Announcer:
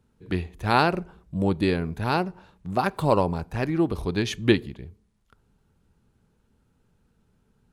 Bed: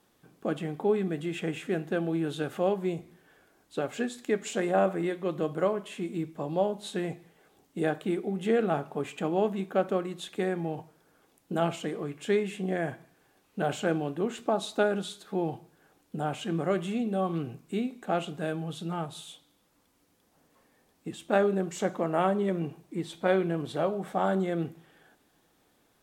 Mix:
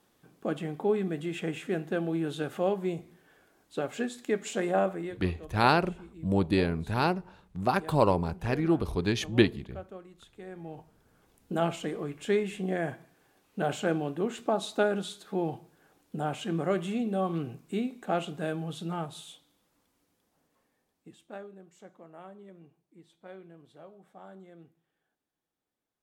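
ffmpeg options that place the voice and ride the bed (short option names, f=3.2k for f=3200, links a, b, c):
-filter_complex "[0:a]adelay=4900,volume=-2.5dB[a];[1:a]volume=15dB,afade=t=out:st=4.74:d=0.56:silence=0.16788,afade=t=in:st=10.42:d=1.05:silence=0.158489,afade=t=out:st=18.86:d=2.63:silence=0.0841395[b];[a][b]amix=inputs=2:normalize=0"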